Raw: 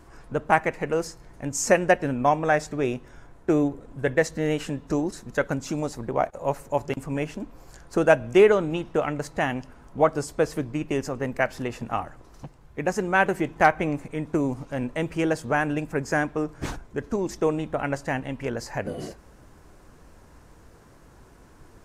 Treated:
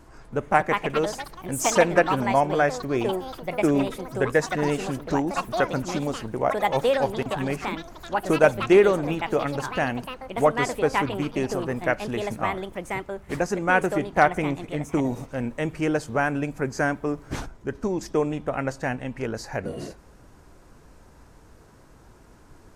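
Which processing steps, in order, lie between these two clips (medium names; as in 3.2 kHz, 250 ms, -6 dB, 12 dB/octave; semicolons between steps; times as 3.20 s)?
ever faster or slower copies 311 ms, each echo +5 st, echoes 3, each echo -6 dB; tape speed -4%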